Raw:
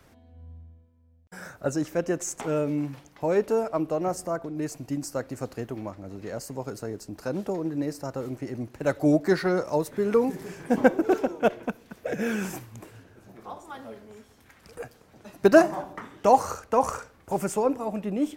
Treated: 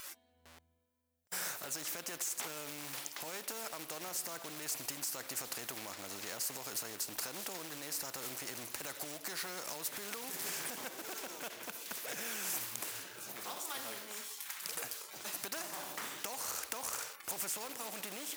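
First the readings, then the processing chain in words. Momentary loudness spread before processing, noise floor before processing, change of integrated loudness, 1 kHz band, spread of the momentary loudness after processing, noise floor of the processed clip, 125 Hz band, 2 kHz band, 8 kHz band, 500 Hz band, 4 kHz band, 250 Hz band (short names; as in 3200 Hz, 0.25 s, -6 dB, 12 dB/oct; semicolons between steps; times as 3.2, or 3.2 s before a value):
19 LU, -58 dBFS, -13.0 dB, -17.0 dB, 5 LU, -71 dBFS, -22.5 dB, -9.0 dB, +2.5 dB, -23.5 dB, +3.5 dB, -24.5 dB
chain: high shelf 6000 Hz +12 dB; spectral noise reduction 20 dB; in parallel at -9.5 dB: companded quantiser 4-bit; on the sum: overloaded stage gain 6 dB; compressor 5:1, threshold -29 dBFS, peak gain reduction 18 dB; limiter -27.5 dBFS, peak gain reduction 11 dB; HPF 1400 Hz 6 dB/oct; spectral compressor 2:1; gain +8 dB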